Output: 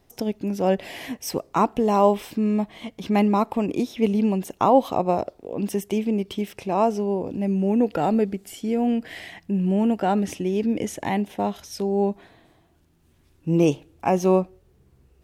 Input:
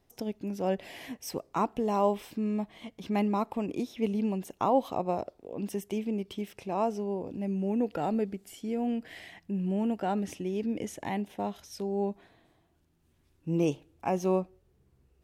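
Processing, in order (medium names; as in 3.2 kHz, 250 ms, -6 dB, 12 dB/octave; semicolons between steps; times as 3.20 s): trim +8.5 dB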